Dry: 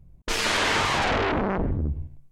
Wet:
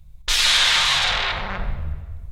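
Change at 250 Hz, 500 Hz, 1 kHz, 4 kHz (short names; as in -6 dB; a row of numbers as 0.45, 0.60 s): -12.0, -8.5, -1.0, +11.5 dB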